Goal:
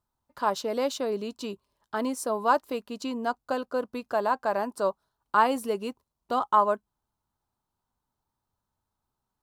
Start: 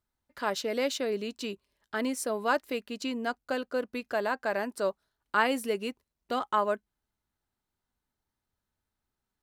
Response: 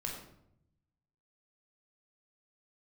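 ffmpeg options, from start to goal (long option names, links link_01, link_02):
-af "equalizer=frequency=125:width_type=o:width=1:gain=5,equalizer=frequency=1000:width_type=o:width=1:gain=10,equalizer=frequency=2000:width_type=o:width=1:gain=-9" -ar 44100 -c:a aac -b:a 128k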